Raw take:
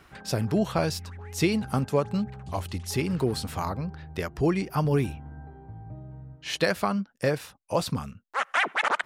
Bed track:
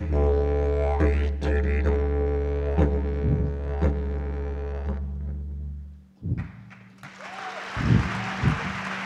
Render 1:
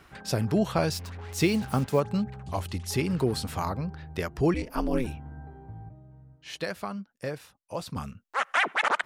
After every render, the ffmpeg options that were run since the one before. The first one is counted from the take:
-filter_complex "[0:a]asettb=1/sr,asplit=3[s0][s1][s2];[s0]atrim=end=0.924[s3];[s1]atrim=start=0.92:end=2,asetpts=PTS-STARTPTS,afade=t=in:d=0.004:c=qsin,afade=t=out:st=1.076:d=0.004:c=qsin,acrusher=bits=6:mix=0:aa=0.5[s4];[s2]atrim=start=1.996[s5];[s3][s4]acrossfade=d=0.004:c1=hsin:c2=qsin[s6];[s6][s5]acrossfade=d=0.004:c1=qsin:c2=hsin,asettb=1/sr,asplit=3[s7][s8][s9];[s7]atrim=end=4.544[s10];[s8]atrim=start=4.54:end=5.07,asetpts=PTS-STARTPTS,afade=t=in:d=0.004:c=qsin,afade=t=out:st=0.526:d=0.004:c=qsin,aeval=exprs='val(0)*sin(2*PI*120*n/s)':c=same[s11];[s9]atrim=start=5.066[s12];[s10][s11]acrossfade=d=0.004:c1=hsin:c2=qsin[s13];[s13][s12]acrossfade=d=0.004:c1=qsin:c2=hsin,asplit=3[s14][s15][s16];[s14]atrim=end=5.892[s17];[s15]atrim=start=5.888:end=7.962,asetpts=PTS-STARTPTS,volume=0.376[s18];[s16]atrim=start=7.958[s19];[s17][s18]acrossfade=d=0.004:c1=hsin:c2=hsin[s20];[s20][s19]acrossfade=d=0.004:c1=hsin:c2=hsin"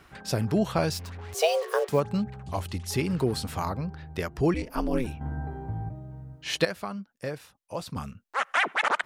-filter_complex "[0:a]asettb=1/sr,asplit=3[s0][s1][s2];[s0]atrim=end=1.344[s3];[s1]atrim=start=1.34:end=1.89,asetpts=PTS-STARTPTS,afade=t=in:d=0.004:c=qsin,afade=t=out:st=0.546:d=0.004:c=qsin,afreqshift=310[s4];[s2]atrim=start=1.886[s5];[s3][s4]acrossfade=d=0.004:c1=hsin:c2=qsin[s6];[s6][s5]acrossfade=d=0.004:c1=qsin:c2=hsin,asplit=3[s7][s8][s9];[s7]atrim=end=5.212[s10];[s8]atrim=start=5.208:end=6.652,asetpts=PTS-STARTPTS,volume=2.99[s11];[s9]atrim=start=6.648[s12];[s10][s11]acrossfade=d=0.004:c1=hsin:c2=hsin[s13];[s13][s12]acrossfade=d=0.004:c1=hsin:c2=hsin"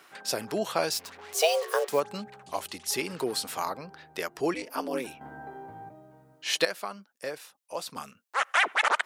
-af "highpass=390,highshelf=f=3900:g=6"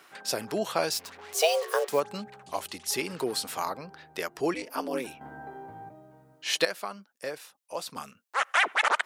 -af anull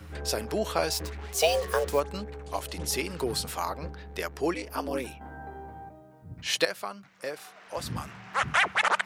-filter_complex "[1:a]volume=0.15[s0];[0:a][s0]amix=inputs=2:normalize=0"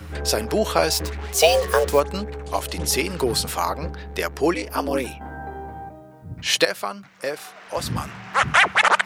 -af "volume=2.51,alimiter=limit=0.794:level=0:latency=1"

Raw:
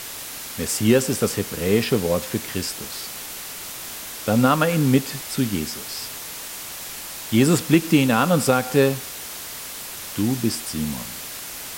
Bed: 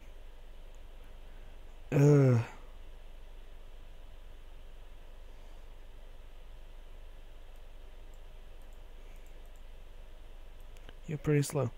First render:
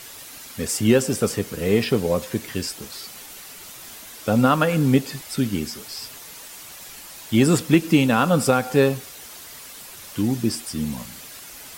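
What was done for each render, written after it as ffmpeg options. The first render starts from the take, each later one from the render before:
-af "afftdn=nr=8:nf=-35"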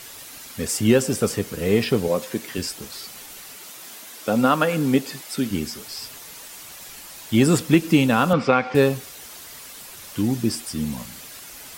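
-filter_complex "[0:a]asettb=1/sr,asplit=3[s0][s1][s2];[s0]atrim=end=2.084[s3];[s1]atrim=start=2.08:end=2.58,asetpts=PTS-STARTPTS,afade=t=in:d=0.004:c=qsin,afade=t=out:st=0.496:d=0.004:c=qsin,highpass=180[s4];[s2]atrim=start=2.576[s5];[s3][s4]acrossfade=d=0.004:c1=hsin:c2=qsin[s6];[s6][s5]acrossfade=d=0.004:c1=qsin:c2=hsin,asettb=1/sr,asplit=3[s7][s8][s9];[s7]atrim=end=3.564[s10];[s8]atrim=start=3.56:end=5.51,asetpts=PTS-STARTPTS,afade=t=in:d=0.004:c=qsin,afade=t=out:st=1.946:d=0.004:c=qsin,highpass=190[s11];[s9]atrim=start=5.506[s12];[s10][s11]acrossfade=d=0.004:c1=hsin:c2=qsin[s13];[s13][s12]acrossfade=d=0.004:c1=qsin:c2=hsin,asettb=1/sr,asplit=3[s14][s15][s16];[s14]atrim=end=8.334[s17];[s15]atrim=start=8.33:end=8.75,asetpts=PTS-STARTPTS,afade=t=in:d=0.004:c=qsin,afade=t=out:st=0.416:d=0.004:c=qsin,highpass=150,equalizer=f=1100:t=q:w=4:g=6,equalizer=f=2200:t=q:w=4:g=10,equalizer=f=4000:t=q:w=4:g=-3,lowpass=f=4500:w=0.5412,lowpass=f=4500:w=1.3066[s18];[s16]atrim=start=8.746[s19];[s17][s18]acrossfade=d=0.004:c1=hsin:c2=qsin[s20];[s20][s19]acrossfade=d=0.004:c1=qsin:c2=hsin"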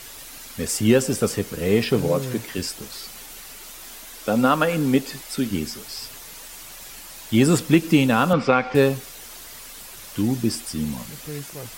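-filter_complex "[1:a]volume=0.531[s0];[0:a][s0]amix=inputs=2:normalize=0"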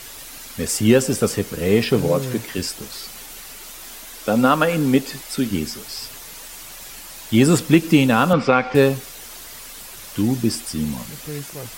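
-af "volume=1.33,alimiter=limit=0.794:level=0:latency=1"

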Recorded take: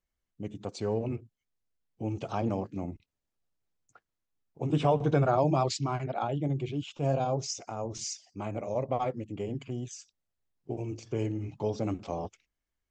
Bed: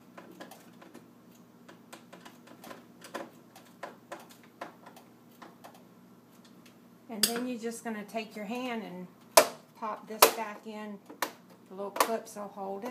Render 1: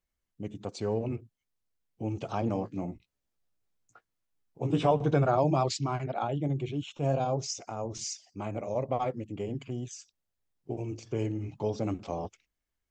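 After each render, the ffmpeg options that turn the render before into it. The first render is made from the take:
-filter_complex "[0:a]asettb=1/sr,asplit=3[s0][s1][s2];[s0]atrim=end=2.534[s3];[s1]atrim=start=2.53:end=4.91,asetpts=PTS-STARTPTS,afade=t=in:d=0.004:c=qsin,afade=t=out:st=2.376:d=0.004:c=qsin,asplit=2[s4][s5];[s5]adelay=17,volume=0.473[s6];[s4][s6]amix=inputs=2:normalize=0,atrim=end_sample=104958[s7];[s2]atrim=start=4.906[s8];[s3][s7]acrossfade=d=0.004:c1=hsin:c2=qsin[s9];[s9][s8]acrossfade=d=0.004:c1=qsin:c2=hsin,asettb=1/sr,asplit=3[s10][s11][s12];[s10]atrim=end=6.204[s13];[s11]atrim=start=6.2:end=7.14,asetpts=PTS-STARTPTS,afade=t=in:d=0.004:c=qsin,afade=t=out:st=0.936:d=0.004:c=qsin,asuperstop=centerf=4800:order=4:qfactor=7.9[s14];[s12]atrim=start=7.136[s15];[s13][s14]acrossfade=d=0.004:c1=hsin:c2=qsin[s16];[s16][s15]acrossfade=d=0.004:c1=qsin:c2=hsin"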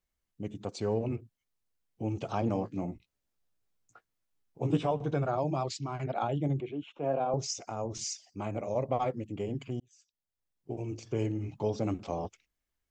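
-filter_complex "[0:a]asettb=1/sr,asplit=3[s0][s1][s2];[s0]atrim=end=6.604[s3];[s1]atrim=start=6.6:end=7.34,asetpts=PTS-STARTPTS,afade=t=in:d=0.004:c=qsin,afade=t=out:st=0.736:d=0.004:c=qsin,acrossover=split=230 2600:gain=0.158 1 0.0708[s4][s5][s6];[s4][s5][s6]amix=inputs=3:normalize=0[s7];[s2]atrim=start=7.336[s8];[s3][s7]acrossfade=d=0.004:c1=hsin:c2=qsin[s9];[s9][s8]acrossfade=d=0.004:c1=qsin:c2=hsin,asplit=4[s10][s11][s12][s13];[s10]atrim=end=4.772[s14];[s11]atrim=start=4.768:end=5.992,asetpts=PTS-STARTPTS,volume=0.531[s15];[s12]atrim=start=5.988:end=9.8,asetpts=PTS-STARTPTS,afade=t=out:st=3.808:d=0.004:c=hsin[s16];[s13]atrim=start=9.8,asetpts=PTS-STARTPTS,afade=t=in:d=1.2[s17];[s14][s15]acrossfade=d=0.004:c1=hsin:c2=hsin[s18];[s16][s17]concat=n=2:v=0:a=1[s19];[s18][s19]acrossfade=d=0.004:c1=hsin:c2=hsin"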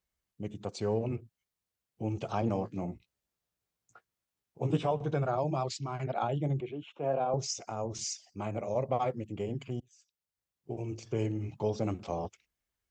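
-af "highpass=41,equalizer=f=280:w=6.8:g=-6"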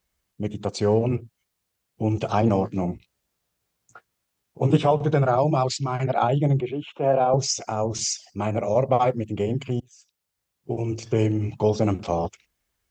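-af "volume=3.35"

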